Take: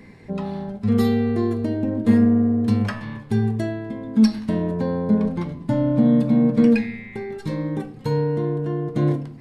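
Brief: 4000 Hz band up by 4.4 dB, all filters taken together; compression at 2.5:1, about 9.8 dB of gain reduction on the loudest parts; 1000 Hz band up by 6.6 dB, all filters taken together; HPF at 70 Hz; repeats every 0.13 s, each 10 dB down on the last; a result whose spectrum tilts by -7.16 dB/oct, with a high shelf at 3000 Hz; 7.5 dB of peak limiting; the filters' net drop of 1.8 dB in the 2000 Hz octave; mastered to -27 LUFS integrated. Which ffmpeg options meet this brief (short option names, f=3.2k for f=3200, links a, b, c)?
-af "highpass=70,equalizer=f=1k:t=o:g=9,equalizer=f=2k:t=o:g=-7.5,highshelf=f=3k:g=4,equalizer=f=4k:t=o:g=3.5,acompressor=threshold=-26dB:ratio=2.5,alimiter=limit=-20.5dB:level=0:latency=1,aecho=1:1:130|260|390|520:0.316|0.101|0.0324|0.0104,volume=3dB"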